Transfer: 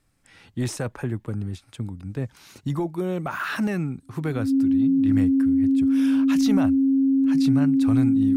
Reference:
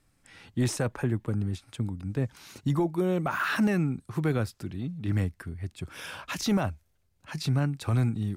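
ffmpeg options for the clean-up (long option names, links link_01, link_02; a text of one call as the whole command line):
ffmpeg -i in.wav -af "bandreject=frequency=270:width=30" out.wav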